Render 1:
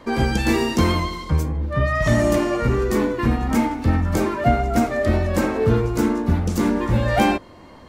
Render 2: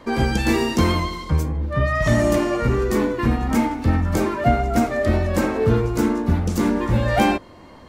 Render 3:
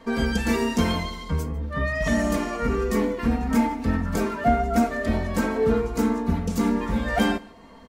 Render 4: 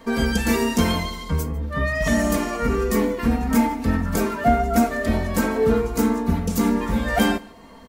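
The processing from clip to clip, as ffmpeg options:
-af anull
-af "aecho=1:1:4.4:0.76,aecho=1:1:148:0.0708,volume=0.531"
-af "highshelf=f=10000:g=12,volume=1.33"

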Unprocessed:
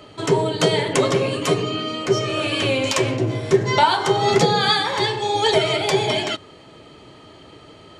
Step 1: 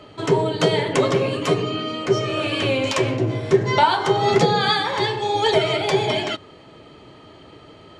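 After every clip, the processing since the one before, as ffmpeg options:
-af "lowpass=f=4000:p=1"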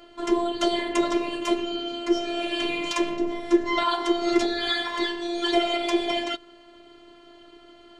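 -af "afftfilt=real='hypot(re,im)*cos(PI*b)':imag='0':win_size=512:overlap=0.75,volume=0.841"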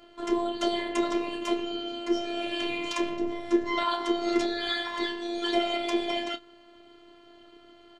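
-filter_complex "[0:a]tremolo=f=100:d=0.261,asplit=2[s0][s1];[s1]adelay=29,volume=0.237[s2];[s0][s2]amix=inputs=2:normalize=0,volume=0.631"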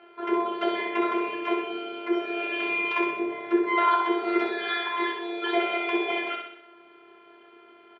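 -af "highpass=200,equalizer=f=280:t=q:w=4:g=-9,equalizer=f=400:t=q:w=4:g=8,equalizer=f=890:t=q:w=4:g=7,equalizer=f=1500:t=q:w=4:g=8,equalizer=f=2300:t=q:w=4:g=7,lowpass=f=2900:w=0.5412,lowpass=f=2900:w=1.3066,aecho=1:1:63|126|189|252|315|378|441:0.596|0.328|0.18|0.0991|0.0545|0.03|0.0165"

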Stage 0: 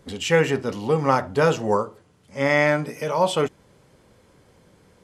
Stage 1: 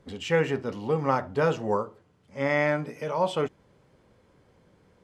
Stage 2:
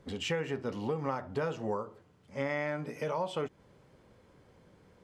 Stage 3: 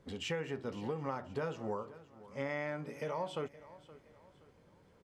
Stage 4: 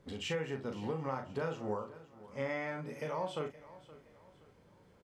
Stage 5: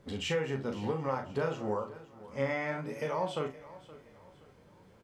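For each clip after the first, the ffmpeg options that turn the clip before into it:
-af "lowpass=f=3100:p=1,volume=0.562"
-af "acompressor=threshold=0.0316:ratio=6"
-af "aecho=1:1:521|1042|1563:0.126|0.0478|0.0182,volume=0.596"
-filter_complex "[0:a]asplit=2[s0][s1];[s1]adelay=38,volume=0.501[s2];[s0][s2]amix=inputs=2:normalize=0"
-af "flanger=delay=8.7:depth=6.4:regen=70:speed=0.99:shape=sinusoidal,volume=2.66"

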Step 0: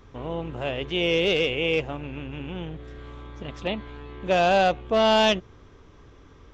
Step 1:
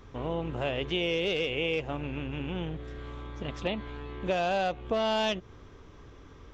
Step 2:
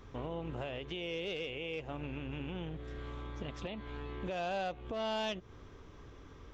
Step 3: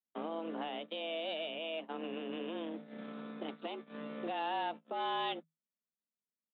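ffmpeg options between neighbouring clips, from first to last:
-af "acompressor=threshold=0.0501:ratio=6"
-af "alimiter=level_in=1.58:limit=0.0631:level=0:latency=1:release=249,volume=0.631,volume=0.75"
-af "agate=range=0.00178:threshold=0.00794:ratio=16:detection=peak,aresample=8000,aresample=44100,afreqshift=160"

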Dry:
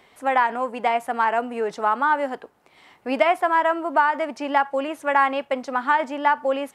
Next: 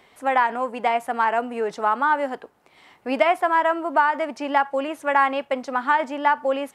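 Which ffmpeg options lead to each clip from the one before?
-af anull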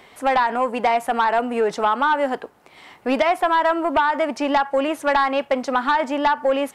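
-af "acompressor=threshold=0.0891:ratio=2.5,aeval=exprs='0.266*sin(PI/2*1.41*val(0)/0.266)':c=same"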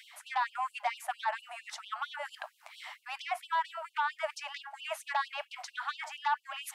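-af "areverse,acompressor=threshold=0.0501:ratio=12,areverse,afftfilt=real='re*gte(b*sr/1024,560*pow(2700/560,0.5+0.5*sin(2*PI*4.4*pts/sr)))':imag='im*gte(b*sr/1024,560*pow(2700/560,0.5+0.5*sin(2*PI*4.4*pts/sr)))':win_size=1024:overlap=0.75"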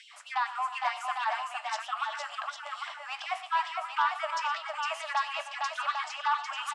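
-af "flanger=delay=8.5:depth=6.9:regen=80:speed=0.55:shape=triangular,highpass=480,equalizer=f=1200:t=q:w=4:g=8,equalizer=f=2800:t=q:w=4:g=4,equalizer=f=5200:t=q:w=4:g=5,equalizer=f=7600:t=q:w=4:g=4,lowpass=f=8700:w=0.5412,lowpass=f=8700:w=1.3066,aecho=1:1:90|118|311|459|800:0.126|0.178|0.119|0.631|0.501,volume=1.58"

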